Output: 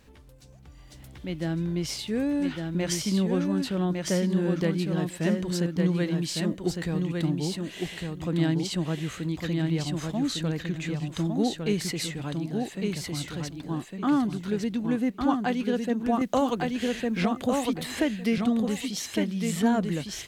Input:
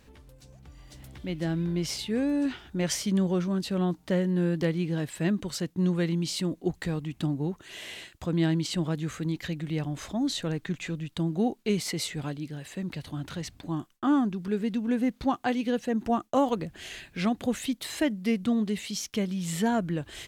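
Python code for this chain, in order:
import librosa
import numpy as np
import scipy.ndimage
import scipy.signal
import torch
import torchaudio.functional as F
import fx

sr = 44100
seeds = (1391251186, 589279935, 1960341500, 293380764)

y = fx.echo_feedback(x, sr, ms=1156, feedback_pct=17, wet_db=-4)
y = fx.band_squash(y, sr, depth_pct=70, at=(16.21, 18.38))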